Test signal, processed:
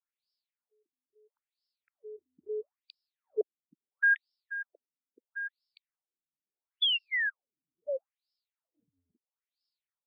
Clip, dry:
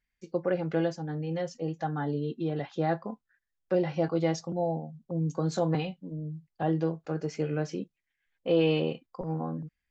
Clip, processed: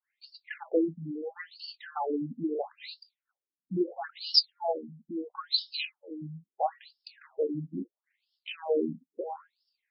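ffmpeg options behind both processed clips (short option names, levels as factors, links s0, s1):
-af "lowshelf=f=150:g=-9.5,aexciter=amount=10.6:drive=5.7:freq=4700,adynamicequalizer=threshold=0.0126:dfrequency=4700:dqfactor=0.75:tfrequency=4700:tqfactor=0.75:attack=5:release=100:ratio=0.375:range=3.5:mode=boostabove:tftype=bell,afftfilt=real='re*between(b*sr/1024,200*pow(3900/200,0.5+0.5*sin(2*PI*0.75*pts/sr))/1.41,200*pow(3900/200,0.5+0.5*sin(2*PI*0.75*pts/sr))*1.41)':imag='im*between(b*sr/1024,200*pow(3900/200,0.5+0.5*sin(2*PI*0.75*pts/sr))/1.41,200*pow(3900/200,0.5+0.5*sin(2*PI*0.75*pts/sr))*1.41)':win_size=1024:overlap=0.75,volume=1.88"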